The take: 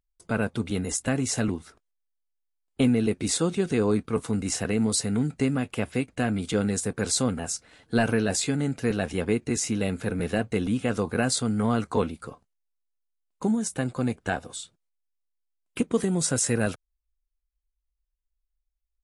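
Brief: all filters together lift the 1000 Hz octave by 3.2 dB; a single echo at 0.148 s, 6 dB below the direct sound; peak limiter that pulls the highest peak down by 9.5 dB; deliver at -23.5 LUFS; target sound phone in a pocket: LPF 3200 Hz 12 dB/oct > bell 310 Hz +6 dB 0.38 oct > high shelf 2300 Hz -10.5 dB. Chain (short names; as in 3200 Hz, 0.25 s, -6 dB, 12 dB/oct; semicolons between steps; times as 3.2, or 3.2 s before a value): bell 1000 Hz +6.5 dB; limiter -17.5 dBFS; LPF 3200 Hz 12 dB/oct; bell 310 Hz +6 dB 0.38 oct; high shelf 2300 Hz -10.5 dB; echo 0.148 s -6 dB; gain +5 dB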